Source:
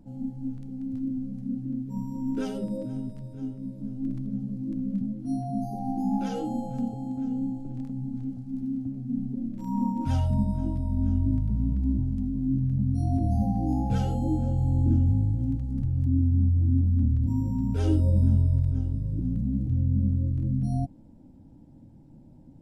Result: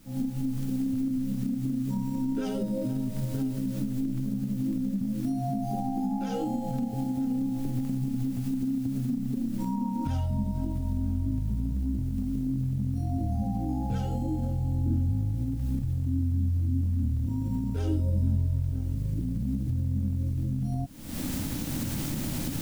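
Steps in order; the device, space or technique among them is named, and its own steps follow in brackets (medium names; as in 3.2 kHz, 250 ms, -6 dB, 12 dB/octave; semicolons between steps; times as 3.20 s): cheap recorder with automatic gain (white noise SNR 32 dB; recorder AGC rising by 69 dB/s); trim -4.5 dB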